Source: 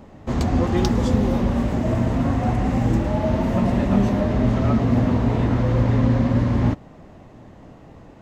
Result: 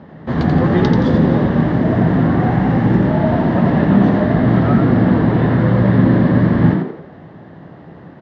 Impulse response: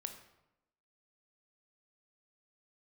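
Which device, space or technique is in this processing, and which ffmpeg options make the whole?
frequency-shifting delay pedal into a guitar cabinet: -filter_complex "[0:a]asplit=6[s0][s1][s2][s3][s4][s5];[s1]adelay=86,afreqshift=72,volume=0.562[s6];[s2]adelay=172,afreqshift=144,volume=0.224[s7];[s3]adelay=258,afreqshift=216,volume=0.0902[s8];[s4]adelay=344,afreqshift=288,volume=0.0359[s9];[s5]adelay=430,afreqshift=360,volume=0.0145[s10];[s0][s6][s7][s8][s9][s10]amix=inputs=6:normalize=0,highpass=96,equalizer=f=160:t=q:w=4:g=8,equalizer=f=1700:t=q:w=4:g=8,equalizer=f=2500:t=q:w=4:g=-7,lowpass=f=4000:w=0.5412,lowpass=f=4000:w=1.3066,volume=1.58"

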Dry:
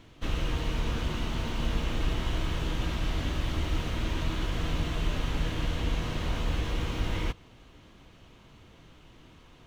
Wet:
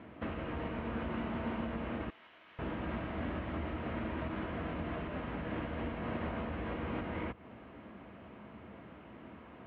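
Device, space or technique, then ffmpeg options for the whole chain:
bass amplifier: -filter_complex "[0:a]acompressor=threshold=0.0178:ratio=4,highpass=f=75:w=0.5412,highpass=f=75:w=1.3066,equalizer=f=99:t=q:w=4:g=-9,equalizer=f=150:t=q:w=4:g=-8,equalizer=f=210:t=q:w=4:g=7,equalizer=f=640:t=q:w=4:g=5,lowpass=f=2200:w=0.5412,lowpass=f=2200:w=1.3066,asettb=1/sr,asplit=3[s0][s1][s2];[s0]atrim=end=2.104[s3];[s1]atrim=start=2.1:end=2.59,asetpts=PTS-STARTPTS,afade=t=in:d=0.004:c=qsin,afade=t=out:st=0.486:d=0.004:c=qsin,aderivative[s4];[s2]atrim=start=2.586[s5];[s3][s4]acrossfade=d=0.004:c1=hsin:c2=qsin[s6];[s6][s5]acrossfade=d=0.004:c1=qsin:c2=hsin,volume=1.68"

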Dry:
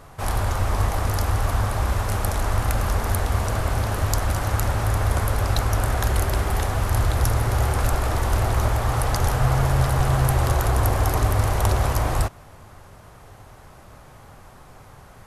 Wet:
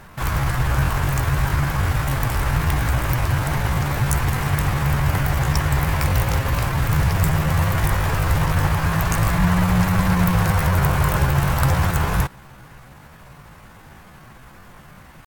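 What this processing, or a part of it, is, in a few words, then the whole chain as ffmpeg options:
chipmunk voice: -af "asetrate=60591,aresample=44100,atempo=0.727827,volume=1.26"

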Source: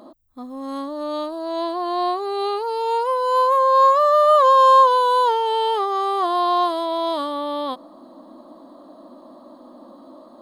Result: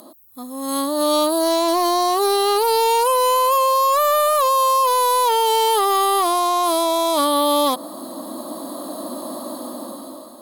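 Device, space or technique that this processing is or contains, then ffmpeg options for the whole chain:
FM broadcast chain: -filter_complex "[0:a]highpass=f=44:w=0.5412,highpass=f=44:w=1.3066,dynaudnorm=f=260:g=7:m=5.01,acrossover=split=1700|6000[s0][s1][s2];[s0]acompressor=threshold=0.251:ratio=4[s3];[s1]acompressor=threshold=0.0282:ratio=4[s4];[s2]acompressor=threshold=0.00447:ratio=4[s5];[s3][s4][s5]amix=inputs=3:normalize=0,aemphasis=mode=production:type=50fm,alimiter=limit=0.316:level=0:latency=1:release=25,asoftclip=type=hard:threshold=0.237,lowpass=f=15000:w=0.5412,lowpass=f=15000:w=1.3066,aemphasis=mode=production:type=50fm"

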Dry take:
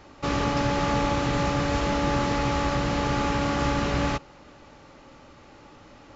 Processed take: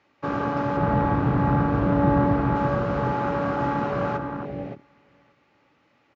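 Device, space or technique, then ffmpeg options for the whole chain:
over-cleaned archive recording: -filter_complex "[0:a]asettb=1/sr,asplit=3[s0][s1][s2];[s0]atrim=end=0.774[s3];[s1]atrim=start=0.77:end=2.56,asetpts=PTS-STARTPTS,afade=t=in:d=0.004:c=qsin,afade=t=out:st=1.786:d=0.004:c=qsin,aemphasis=mode=reproduction:type=bsi[s4];[s2]atrim=start=2.556[s5];[s3][s4]acrossfade=d=0.004:c1=hsin:c2=qsin[s6];[s6][s5]acrossfade=d=0.004:c1=qsin:c2=hsin,highpass=120,lowpass=5800,asplit=2[s7][s8];[s8]adelay=572,lowpass=f=1800:p=1,volume=0.596,asplit=2[s9][s10];[s10]adelay=572,lowpass=f=1800:p=1,volume=0.24,asplit=2[s11][s12];[s12]adelay=572,lowpass=f=1800:p=1,volume=0.24[s13];[s7][s9][s11][s13]amix=inputs=4:normalize=0,afwtdn=0.0398,equalizer=f=2200:t=o:w=1.1:g=7.5"

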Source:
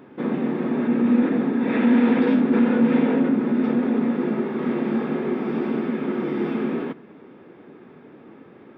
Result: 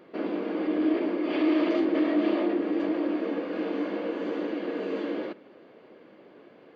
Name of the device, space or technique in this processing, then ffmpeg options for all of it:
nightcore: -af "asetrate=57330,aresample=44100,volume=0.473"

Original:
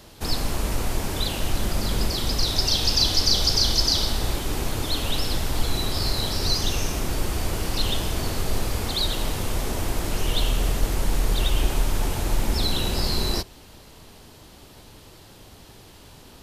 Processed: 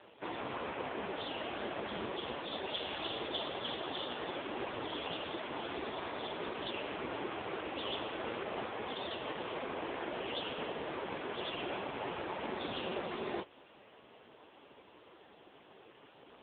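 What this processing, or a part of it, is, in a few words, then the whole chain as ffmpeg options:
telephone: -filter_complex "[0:a]asettb=1/sr,asplit=3[s0][s1][s2];[s0]atrim=end=3.744[s3];[s1]atrim=start=3.74:end=4.72,asetpts=PTS-STARTPTS,afade=t=in:d=0.004:c=qsin,afade=t=out:st=0.976:d=0.004:c=qsin,equalizer=f=100:t=o:w=0.92:g=-5[s4];[s2]atrim=start=4.716[s5];[s3][s4]acrossfade=d=0.004:c1=hsin:c2=qsin[s6];[s6][s5]acrossfade=d=0.004:c1=qsin:c2=hsin,highpass=340,lowpass=3100,volume=0.891" -ar 8000 -c:a libopencore_amrnb -b:a 5150

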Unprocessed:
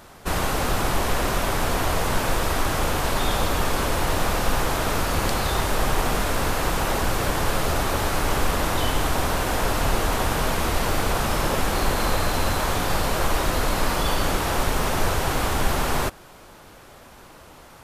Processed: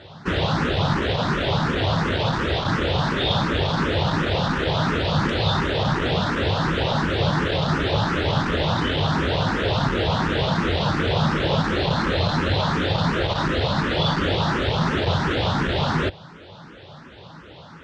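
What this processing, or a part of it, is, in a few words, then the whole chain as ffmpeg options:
barber-pole phaser into a guitar amplifier: -filter_complex "[0:a]asplit=2[s0][s1];[s1]afreqshift=2.8[s2];[s0][s2]amix=inputs=2:normalize=1,asoftclip=type=tanh:threshold=0.119,highpass=84,equalizer=f=99:t=q:w=4:g=6,equalizer=f=160:t=q:w=4:g=9,equalizer=f=730:t=q:w=4:g=-4,equalizer=f=1100:t=q:w=4:g=-4,equalizer=f=2300:t=q:w=4:g=-5,equalizer=f=3600:t=q:w=4:g=5,lowpass=f=4300:w=0.5412,lowpass=f=4300:w=1.3066,volume=2.37"

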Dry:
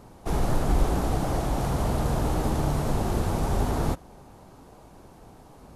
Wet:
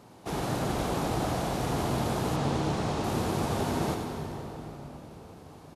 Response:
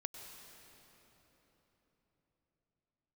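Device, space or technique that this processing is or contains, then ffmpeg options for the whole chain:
PA in a hall: -filter_complex "[0:a]highpass=110,equalizer=f=3400:t=o:w=1.8:g=5,aecho=1:1:92:0.422[s0];[1:a]atrim=start_sample=2205[s1];[s0][s1]afir=irnorm=-1:irlink=0,asettb=1/sr,asplit=3[s2][s3][s4];[s2]atrim=end=2.364[s5];[s3]atrim=start=2.36:end=3.04,asetpts=PTS-STARTPTS,afade=t=in:d=0.004:c=qsin,afade=t=out:st=0.676:d=0.004:c=qsin,lowpass=7500[s6];[s4]atrim=start=3.036[s7];[s5][s6]acrossfade=d=0.004:c1=hsin:c2=qsin[s8];[s8][s7]acrossfade=d=0.004:c1=qsin:c2=hsin"

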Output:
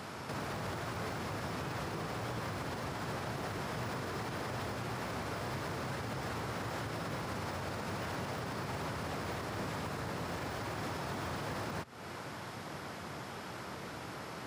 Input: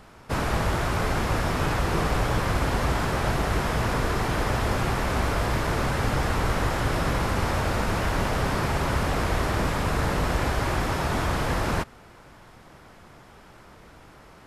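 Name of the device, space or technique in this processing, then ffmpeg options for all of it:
broadcast voice chain: -af "highpass=f=93:w=0.5412,highpass=f=93:w=1.3066,deesser=0.85,acompressor=threshold=0.0112:ratio=4,equalizer=f=4800:t=o:w=0.77:g=3,alimiter=level_in=3.98:limit=0.0631:level=0:latency=1:release=124,volume=0.251,volume=2"

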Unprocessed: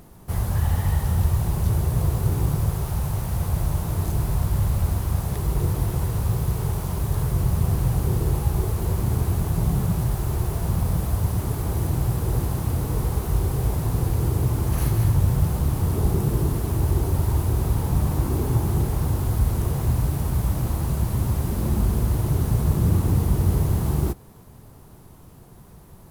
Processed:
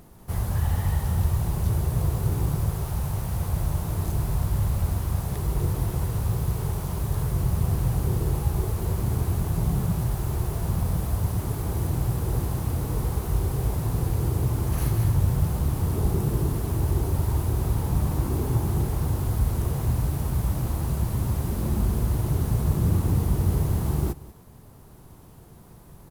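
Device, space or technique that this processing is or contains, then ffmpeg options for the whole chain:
ducked delay: -filter_complex "[0:a]asplit=3[s0][s1][s2];[s1]adelay=188,volume=0.596[s3];[s2]apad=whole_len=1159543[s4];[s3][s4]sidechaincompress=threshold=0.0251:ratio=8:attack=7.4:release=923[s5];[s0][s5]amix=inputs=2:normalize=0,volume=0.75"

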